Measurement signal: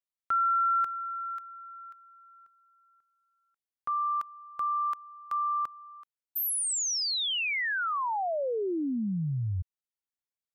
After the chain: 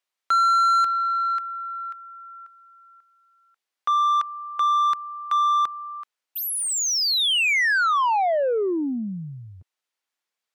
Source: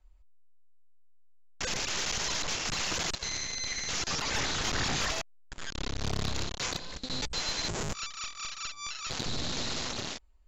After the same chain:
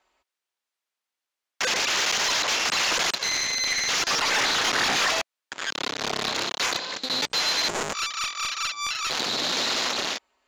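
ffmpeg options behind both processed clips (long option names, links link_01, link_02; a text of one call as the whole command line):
ffmpeg -i in.wav -filter_complex "[0:a]highpass=220,highshelf=frequency=7400:gain=-6,acontrast=36,asplit=2[link_01][link_02];[link_02]highpass=frequency=720:poles=1,volume=14dB,asoftclip=type=tanh:threshold=-14.5dB[link_03];[link_01][link_03]amix=inputs=2:normalize=0,lowpass=frequency=6000:poles=1,volume=-6dB" out.wav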